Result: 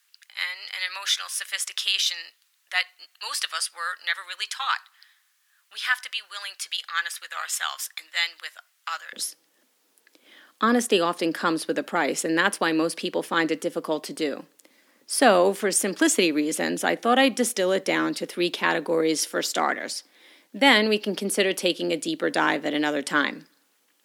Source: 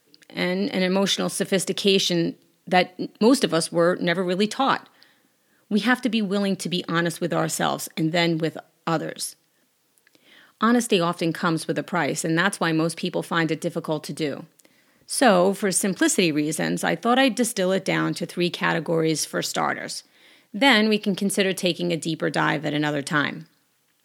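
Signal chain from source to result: high-pass 1.2 kHz 24 dB/octave, from 9.13 s 240 Hz

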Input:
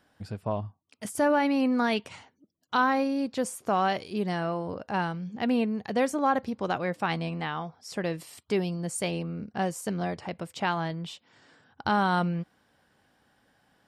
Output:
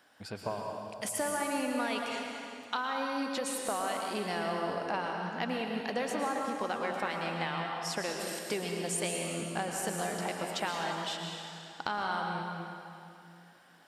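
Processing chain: high-pass 670 Hz 6 dB/octave; compression, threshold -37 dBFS, peak gain reduction 15.5 dB; plate-style reverb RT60 2.6 s, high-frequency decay 0.85×, pre-delay 100 ms, DRR 0.5 dB; trim +5 dB

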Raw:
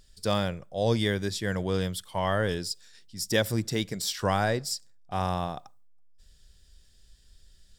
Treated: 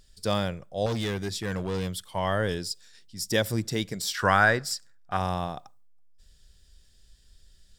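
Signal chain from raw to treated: 0.86–2.13 s: overload inside the chain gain 25.5 dB; 4.14–5.17 s: peaking EQ 1.5 kHz +13 dB 1 oct

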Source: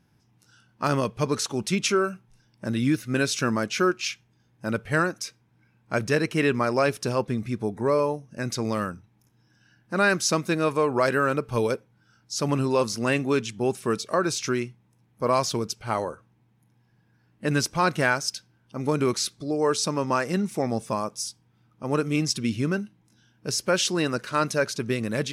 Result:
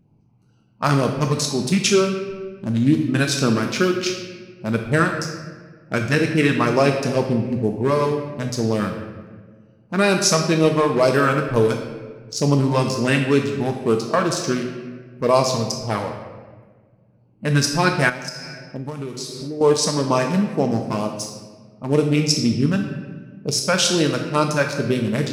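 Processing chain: local Wiener filter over 25 samples; LFO notch sine 2.1 Hz 340–1800 Hz; on a send at -5.5 dB: treble shelf 2.6 kHz +9 dB + reverberation RT60 1.6 s, pre-delay 4 ms; 18.09–19.61 s: on the sum: compression 10:1, threshold -33 dBFS, peak gain reduction 14 dB; trim +6.5 dB

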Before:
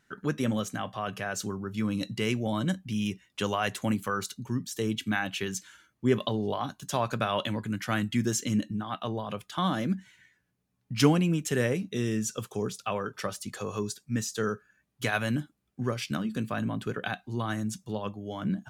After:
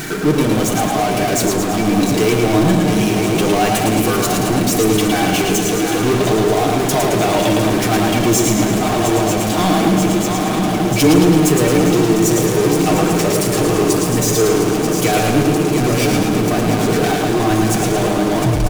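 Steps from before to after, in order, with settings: tape stop on the ending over 0.33 s; small resonant body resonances 370/700/2300 Hz, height 12 dB, ringing for 30 ms; on a send: shuffle delay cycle 937 ms, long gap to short 3:1, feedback 71%, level -12 dB; on the sum: upward compressor, threshold -42 dBFS; treble shelf 9.1 kHz +7.5 dB; Schroeder reverb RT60 1.7 s, combs from 28 ms, DRR 12.5 dB; power-law waveshaper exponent 0.35; peaking EQ 1.7 kHz -4.5 dB 2.7 oct; comb 6.5 ms, depth 50%; modulated delay 110 ms, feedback 55%, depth 65 cents, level -4 dB; trim -3 dB

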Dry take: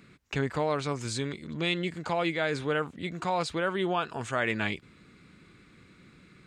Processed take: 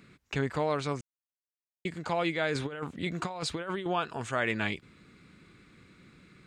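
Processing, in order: 1.01–1.85 s: mute; 2.55–3.86 s: compressor with a negative ratio -32 dBFS, ratio -0.5; trim -1 dB

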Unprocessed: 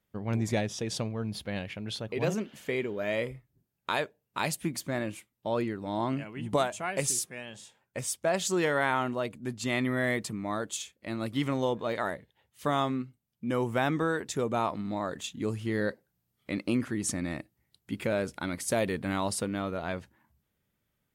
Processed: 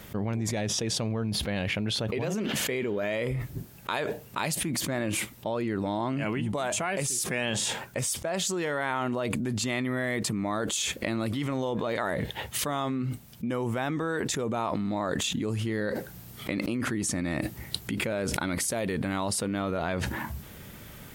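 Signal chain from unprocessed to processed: level flattener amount 100%; trim -6.5 dB

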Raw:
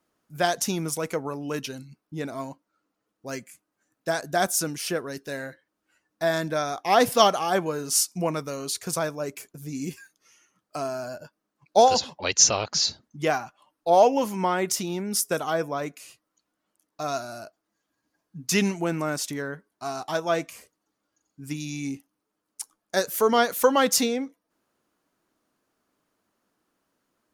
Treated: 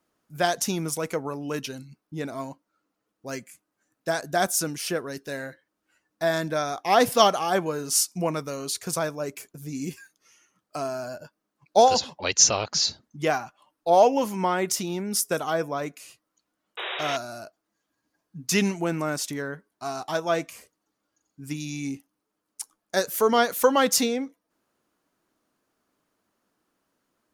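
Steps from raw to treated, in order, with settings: painted sound noise, 16.77–17.17 s, 340–3900 Hz -32 dBFS

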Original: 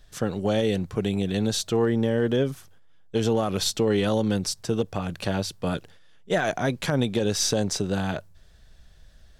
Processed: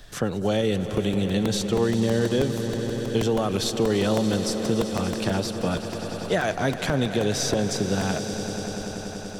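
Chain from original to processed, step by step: echo with a slow build-up 96 ms, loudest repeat 5, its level -16 dB; crackling interface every 0.16 s, samples 128, repeat, from 0.97 s; three bands compressed up and down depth 40%

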